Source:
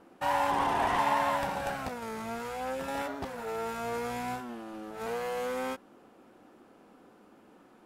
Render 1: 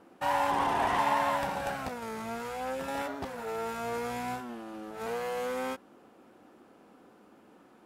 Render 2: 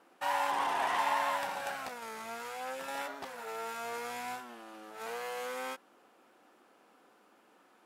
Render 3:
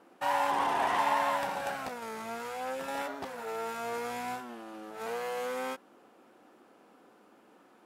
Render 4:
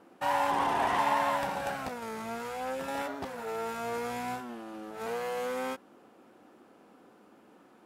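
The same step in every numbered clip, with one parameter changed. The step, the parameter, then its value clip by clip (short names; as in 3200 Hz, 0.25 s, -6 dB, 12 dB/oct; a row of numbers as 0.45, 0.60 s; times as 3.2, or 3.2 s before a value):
HPF, cutoff: 40, 990, 350, 120 Hz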